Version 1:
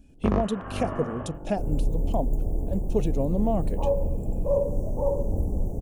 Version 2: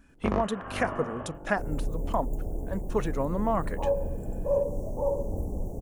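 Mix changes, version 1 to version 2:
speech: add band shelf 1400 Hz +16 dB 1.3 oct; master: add low shelf 320 Hz -6.5 dB

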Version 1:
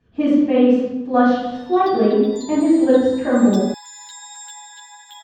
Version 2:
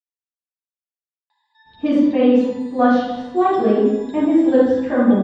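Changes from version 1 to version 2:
speech: entry +1.65 s; background: add BPF 480–2400 Hz

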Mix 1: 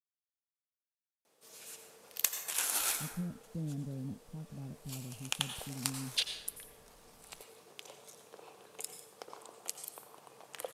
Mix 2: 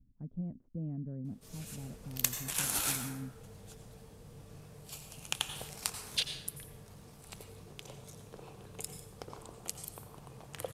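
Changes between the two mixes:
speech: entry -2.80 s; background: remove HPF 440 Hz 12 dB/oct

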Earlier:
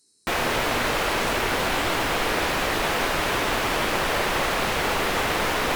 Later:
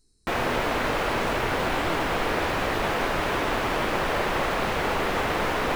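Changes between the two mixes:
speech: remove HPF 230 Hz 12 dB/oct; master: add bell 13000 Hz -9.5 dB 2.8 oct

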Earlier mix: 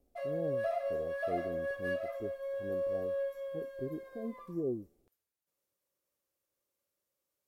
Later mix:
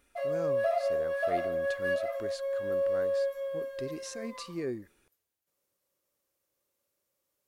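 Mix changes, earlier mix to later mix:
speech: remove steep low-pass 790 Hz 96 dB/oct; background +5.5 dB

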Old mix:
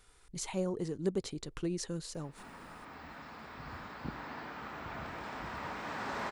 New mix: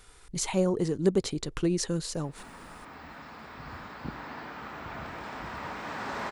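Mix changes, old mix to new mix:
speech +8.5 dB; background +3.0 dB

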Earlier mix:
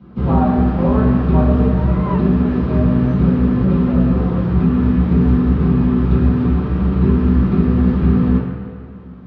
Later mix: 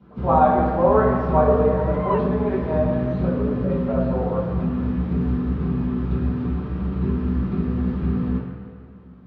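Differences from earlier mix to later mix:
speech +5.5 dB; first sound -9.0 dB

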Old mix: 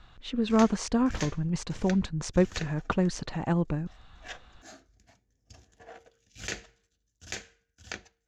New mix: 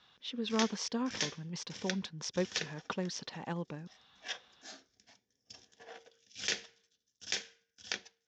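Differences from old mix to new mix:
speech -6.0 dB; master: add speaker cabinet 240–6600 Hz, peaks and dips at 320 Hz -7 dB, 670 Hz -6 dB, 1300 Hz -4 dB, 3400 Hz +7 dB, 5400 Hz +9 dB

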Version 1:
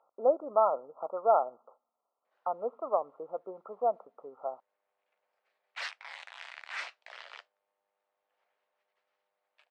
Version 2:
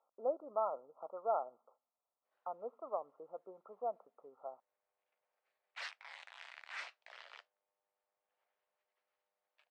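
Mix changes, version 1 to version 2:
speech -10.5 dB; background -7.0 dB

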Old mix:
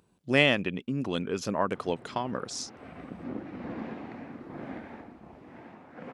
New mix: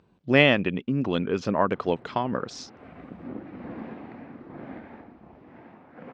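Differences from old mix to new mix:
speech +5.5 dB; master: add air absorption 180 m

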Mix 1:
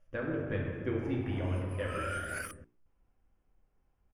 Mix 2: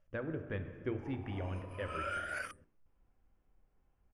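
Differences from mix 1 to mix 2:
speech: send -11.0 dB; master: add air absorption 62 m

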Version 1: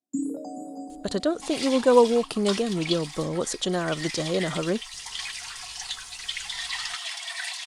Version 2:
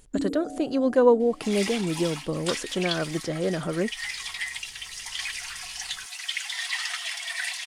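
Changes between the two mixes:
speech: entry -0.90 s; second sound: add high shelf 2500 Hz +9.5 dB; master: add graphic EQ 1000/2000/4000/8000 Hz -4/+3/-7/-7 dB

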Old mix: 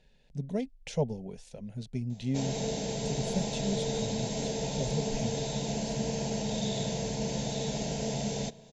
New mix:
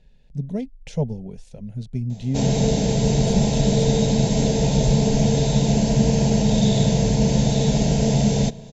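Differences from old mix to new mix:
background +8.5 dB; master: add low shelf 230 Hz +12 dB

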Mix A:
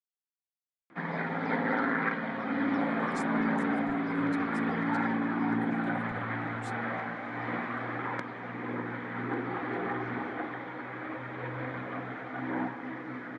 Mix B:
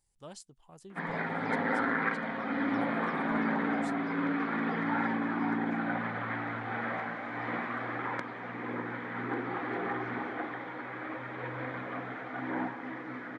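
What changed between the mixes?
speech: entry -2.80 s; master: add low shelf 230 Hz -4.5 dB

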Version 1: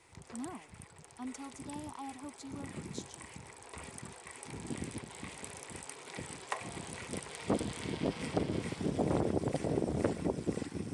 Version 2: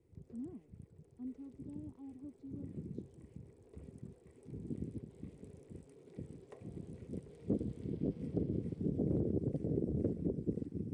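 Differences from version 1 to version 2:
speech: add air absorption 180 m; master: add EQ curve 170 Hz 0 dB, 450 Hz -4 dB, 900 Hz -27 dB

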